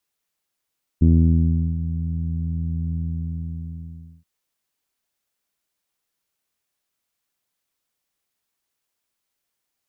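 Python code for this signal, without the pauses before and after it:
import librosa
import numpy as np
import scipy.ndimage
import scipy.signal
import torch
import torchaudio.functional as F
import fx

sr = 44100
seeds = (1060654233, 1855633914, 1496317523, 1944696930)

y = fx.sub_voice(sr, note=40, wave='saw', cutoff_hz=200.0, q=1.4, env_oct=0.5, env_s=0.8, attack_ms=14.0, decay_s=0.74, sustain_db=-12.0, release_s=1.29, note_s=1.94, slope=24)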